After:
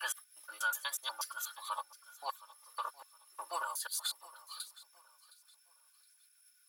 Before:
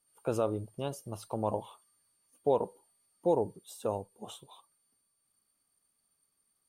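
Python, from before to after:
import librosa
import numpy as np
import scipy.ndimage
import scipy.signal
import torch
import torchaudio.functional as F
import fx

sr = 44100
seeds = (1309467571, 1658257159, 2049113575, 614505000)

p1 = fx.block_reorder(x, sr, ms=121.0, group=3)
p2 = scipy.signal.sosfilt(scipy.signal.butter(4, 1300.0, 'highpass', fs=sr, output='sos'), p1)
p3 = p2 + 0.84 * np.pad(p2, (int(3.4 * sr / 1000.0), 0))[:len(p2)]
p4 = fx.formant_shift(p3, sr, semitones=3)
p5 = p4 + fx.echo_feedback(p4, sr, ms=716, feedback_pct=32, wet_db=-19, dry=0)
y = p5 * 10.0 ** (10.0 / 20.0)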